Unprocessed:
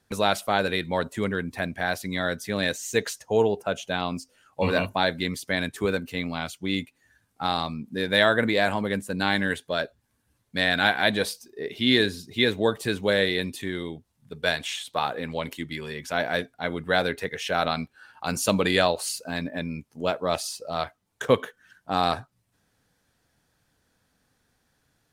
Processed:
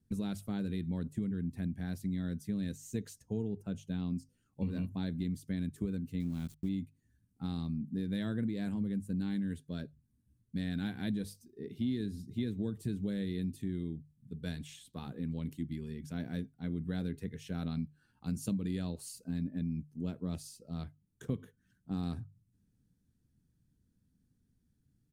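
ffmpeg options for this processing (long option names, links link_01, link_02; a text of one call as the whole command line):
ffmpeg -i in.wav -filter_complex "[0:a]asettb=1/sr,asplit=3[link_01][link_02][link_03];[link_01]atrim=end=6.204[link_04];[link_02]atrim=start=6.2:end=6.69,asetpts=PTS-STARTPTS,afade=type=in:duration=0.004:curve=qsin,afade=type=out:start_time=0.486:duration=0.004:curve=qsin,aeval=exprs='val(0)*gte(abs(val(0)),0.0168)':channel_layout=same[link_05];[link_03]atrim=start=6.686[link_06];[link_04][link_05]acrossfade=duration=0.004:curve1=hsin:curve2=qsin[link_07];[link_07][link_06]acrossfade=duration=0.004:curve1=qsin:curve2=hsin,firequalizer=gain_entry='entry(200,0);entry(600,-27);entry(8100,-16)':delay=0.05:min_phase=1,acompressor=threshold=-32dB:ratio=6,bandreject=frequency=50:width_type=h:width=6,bandreject=frequency=100:width_type=h:width=6,bandreject=frequency=150:width_type=h:width=6,volume=1.5dB" out.wav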